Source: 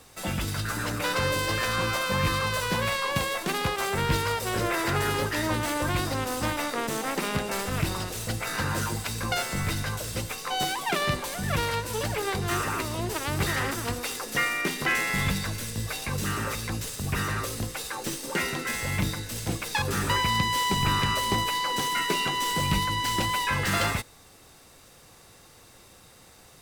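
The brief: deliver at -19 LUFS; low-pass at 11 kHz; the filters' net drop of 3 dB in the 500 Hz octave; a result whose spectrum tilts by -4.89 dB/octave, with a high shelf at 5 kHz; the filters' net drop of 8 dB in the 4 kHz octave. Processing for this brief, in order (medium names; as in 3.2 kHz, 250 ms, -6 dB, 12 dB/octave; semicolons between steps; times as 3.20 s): low-pass 11 kHz; peaking EQ 500 Hz -3.5 dB; peaking EQ 4 kHz -8 dB; treble shelf 5 kHz -7.5 dB; trim +11 dB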